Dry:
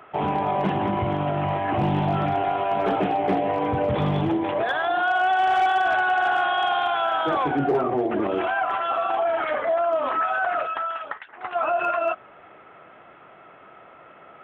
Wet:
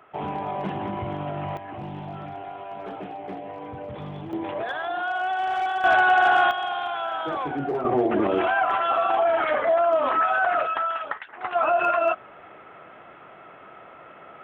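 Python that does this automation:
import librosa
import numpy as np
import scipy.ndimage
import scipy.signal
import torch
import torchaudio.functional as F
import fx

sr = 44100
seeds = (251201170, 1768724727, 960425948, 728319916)

y = fx.gain(x, sr, db=fx.steps((0.0, -6.0), (1.57, -13.0), (4.33, -5.5), (5.84, 3.5), (6.51, -5.5), (7.85, 2.0)))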